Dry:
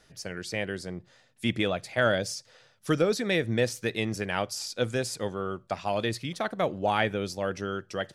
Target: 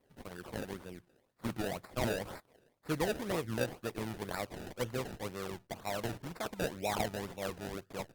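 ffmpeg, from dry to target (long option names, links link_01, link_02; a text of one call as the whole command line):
ffmpeg -i in.wav -af "acrusher=samples=28:mix=1:aa=0.000001:lfo=1:lforange=28:lforate=2,volume=-8.5dB" -ar 48000 -c:a libopus -b:a 20k out.opus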